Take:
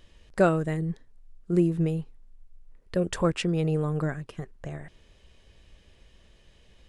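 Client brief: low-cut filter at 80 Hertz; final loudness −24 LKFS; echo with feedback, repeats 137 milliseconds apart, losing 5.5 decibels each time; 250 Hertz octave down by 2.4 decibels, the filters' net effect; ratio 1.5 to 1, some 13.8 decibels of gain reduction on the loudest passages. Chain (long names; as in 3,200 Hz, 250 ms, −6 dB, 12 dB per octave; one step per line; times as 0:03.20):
high-pass filter 80 Hz
parametric band 250 Hz −4.5 dB
downward compressor 1.5 to 1, threshold −57 dBFS
repeating echo 137 ms, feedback 53%, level −5.5 dB
level +16.5 dB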